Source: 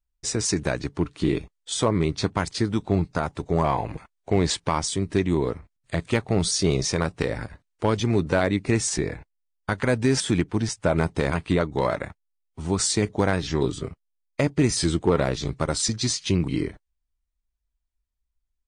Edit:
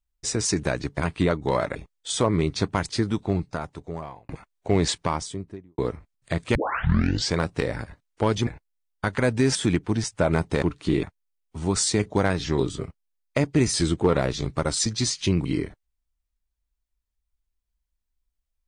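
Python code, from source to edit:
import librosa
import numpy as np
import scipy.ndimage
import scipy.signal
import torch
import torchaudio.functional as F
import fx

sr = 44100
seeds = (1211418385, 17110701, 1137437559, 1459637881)

y = fx.studio_fade_out(x, sr, start_s=4.53, length_s=0.87)
y = fx.edit(y, sr, fx.swap(start_s=0.97, length_s=0.41, other_s=11.27, other_length_s=0.79),
    fx.fade_out_span(start_s=2.65, length_s=1.26),
    fx.tape_start(start_s=6.17, length_s=0.8),
    fx.cut(start_s=8.09, length_s=1.03), tone=tone)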